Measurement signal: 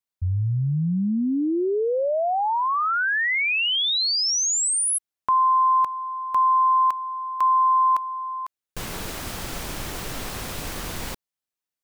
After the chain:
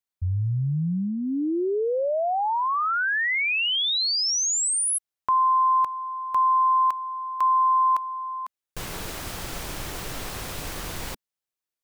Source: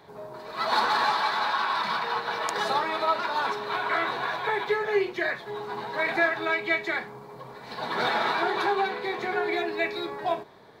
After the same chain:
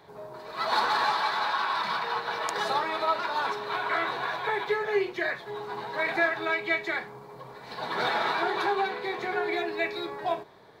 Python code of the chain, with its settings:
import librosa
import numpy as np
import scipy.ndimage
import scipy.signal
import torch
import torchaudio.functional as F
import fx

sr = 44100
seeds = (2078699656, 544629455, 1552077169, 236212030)

y = fx.peak_eq(x, sr, hz=230.0, db=-4.0, octaves=0.39)
y = F.gain(torch.from_numpy(y), -1.5).numpy()